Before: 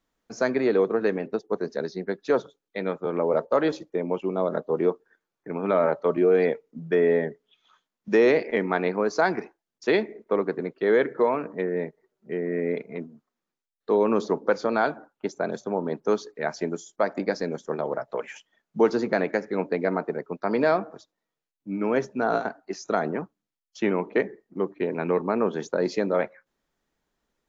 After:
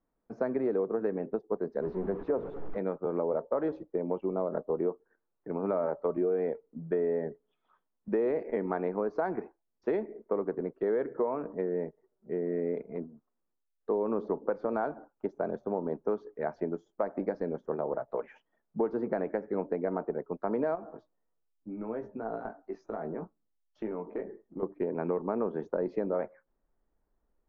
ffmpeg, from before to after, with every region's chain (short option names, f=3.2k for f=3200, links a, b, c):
-filter_complex "[0:a]asettb=1/sr,asplit=3[a][b][c];[a]atrim=end=1.824[d];[b]atrim=start=1.82:end=2.78,asetpts=PTS-STARTPTS,afade=t=in:d=0.004:c=qsin,afade=t=out:st=0.956:d=0.004:c=qsin,aeval=exprs='val(0)+0.5*0.0355*sgn(val(0))':c=same,lowpass=f=1k:p=1,bandreject=f=60:t=h:w=6,bandreject=f=120:t=h:w=6,bandreject=f=180:t=h:w=6,bandreject=f=240:t=h:w=6,bandreject=f=300:t=h:w=6,bandreject=f=360:t=h:w=6,bandreject=f=420:t=h:w=6,bandreject=f=480:t=h:w=6[e];[c]atrim=start=2.776[f];[d][e]acrossfade=d=0.004:c1=hsin:c2=qsin[g];[g][f]acrossfade=d=0.004:c1=qsin:c2=hsin,asettb=1/sr,asplit=3[h][i][j];[h]atrim=end=20.754[k];[i]atrim=start=20.75:end=24.63,asetpts=PTS-STARTPTS,afade=t=in:d=0.004:c=qsin,afade=t=out:st=3.876:d=0.004:c=qsin,acompressor=threshold=-31dB:ratio=4:attack=3.2:release=140:knee=1:detection=peak,asplit=2[l][m];[m]adelay=18,volume=-5.5dB[n];[l][n]amix=inputs=2:normalize=0,atrim=end_sample=171108[o];[j]atrim=start=24.626[p];[k][o]acrossfade=d=0.004:c1=hsin:c2=qsin[q];[q][p]acrossfade=d=0.004:c1=qsin:c2=hsin,lowpass=1k,asubboost=boost=3.5:cutoff=64,acompressor=threshold=-25dB:ratio=4,volume=-1.5dB"